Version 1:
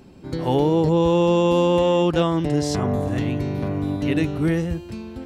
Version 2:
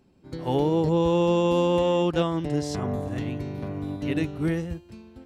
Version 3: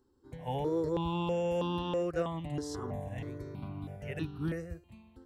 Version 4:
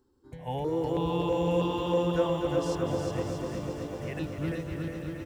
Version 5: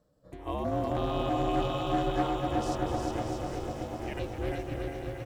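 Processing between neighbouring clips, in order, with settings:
expander for the loud parts 1.5 to 1, over −38 dBFS; level −3.5 dB
step-sequenced phaser 3.1 Hz 650–2,100 Hz; level −6 dB
bouncing-ball delay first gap 360 ms, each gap 0.75×, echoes 5; feedback echo at a low word length 249 ms, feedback 80%, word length 10 bits, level −8.5 dB; level +1.5 dB
asymmetric clip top −26.5 dBFS; ring modulation 210 Hz; level +2.5 dB

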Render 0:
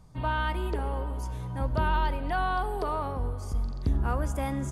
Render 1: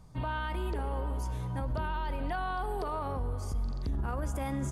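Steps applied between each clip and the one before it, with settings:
brickwall limiter −25.5 dBFS, peak gain reduction 9.5 dB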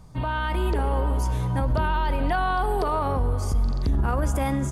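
automatic gain control gain up to 3.5 dB
level +6.5 dB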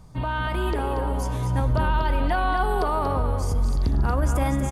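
single-tap delay 235 ms −7 dB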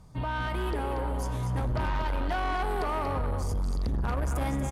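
harmonic generator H 7 −25 dB, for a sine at −12 dBFS
soft clipping −25 dBFS, distortion −9 dB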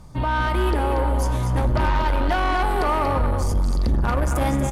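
convolution reverb RT60 0.15 s, pre-delay 3 ms, DRR 10.5 dB
level +8.5 dB

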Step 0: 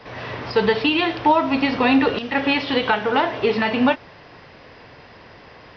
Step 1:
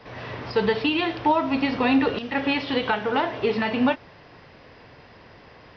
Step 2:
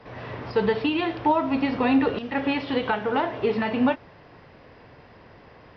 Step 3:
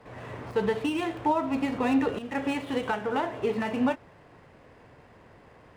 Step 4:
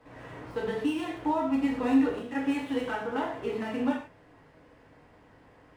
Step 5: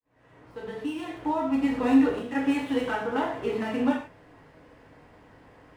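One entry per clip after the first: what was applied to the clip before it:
low-shelf EQ 360 Hz +3 dB; level −5 dB
high-shelf EQ 2,600 Hz −8.5 dB
running median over 9 samples; level −4 dB
reverb whose tail is shaped and stops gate 170 ms falling, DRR −2 dB; level −7.5 dB
fade in at the beginning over 1.92 s; level +3.5 dB

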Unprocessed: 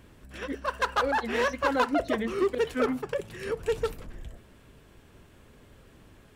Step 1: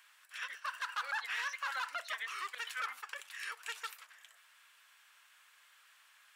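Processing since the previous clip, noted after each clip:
high-pass filter 1,200 Hz 24 dB per octave
brickwall limiter −28.5 dBFS, peak gain reduction 11 dB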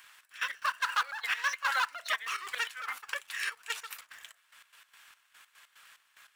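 in parallel at −11.5 dB: log-companded quantiser 4 bits
on the sum: gate pattern "xx..x.x." 146 BPM −12 dB
level +7 dB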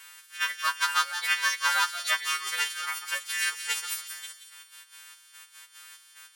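every partial snapped to a pitch grid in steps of 2 semitones
on a send: delay with a high-pass on its return 177 ms, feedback 42%, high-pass 2,600 Hz, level −8.5 dB
on the sum: level +1 dB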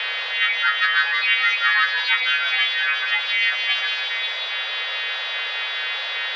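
converter with a step at zero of −31.5 dBFS
single-sideband voice off tune +290 Hz 160–3,500 Hz
envelope flattener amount 50%
level +4.5 dB

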